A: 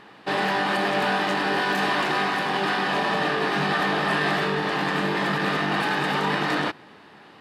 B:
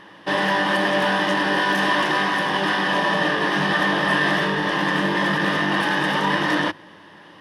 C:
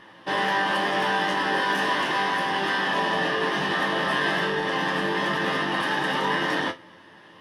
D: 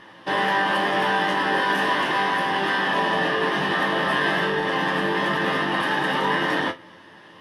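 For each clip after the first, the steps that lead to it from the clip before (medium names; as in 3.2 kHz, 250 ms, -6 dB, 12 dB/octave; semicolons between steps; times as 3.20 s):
rippled EQ curve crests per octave 1.2, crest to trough 8 dB; trim +2 dB
chord resonator F2 major, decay 0.21 s; trim +6.5 dB
dynamic bell 6.1 kHz, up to -5 dB, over -45 dBFS, Q 0.97; trim +3 dB; MP3 112 kbps 32 kHz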